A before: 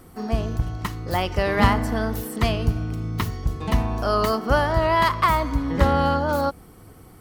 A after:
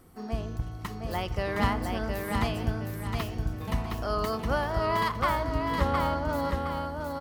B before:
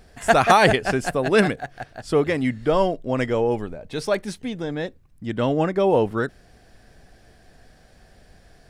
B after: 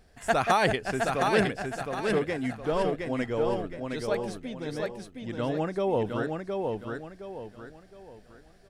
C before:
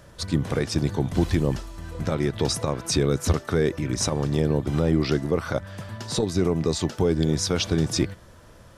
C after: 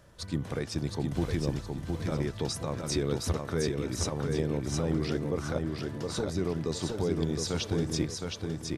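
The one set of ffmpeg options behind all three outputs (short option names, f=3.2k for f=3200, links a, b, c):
-af "aecho=1:1:715|1430|2145|2860:0.631|0.221|0.0773|0.0271,volume=-8.5dB"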